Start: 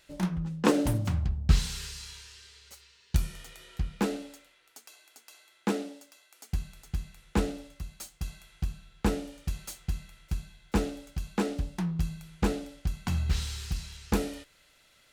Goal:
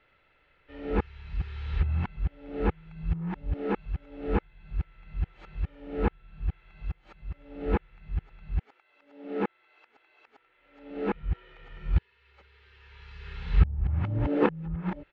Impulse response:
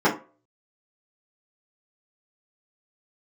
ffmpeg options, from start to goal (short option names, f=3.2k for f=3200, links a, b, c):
-af "areverse,lowpass=f=2.5k:w=0.5412,lowpass=f=2.5k:w=1.3066,aecho=1:1:2.3:0.33"